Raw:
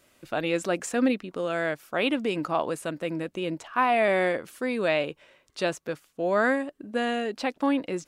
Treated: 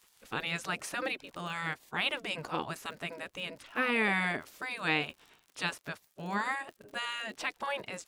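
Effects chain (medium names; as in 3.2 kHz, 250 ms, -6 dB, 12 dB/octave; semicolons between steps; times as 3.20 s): crackle 76 per s -44 dBFS; spectral gate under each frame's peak -10 dB weak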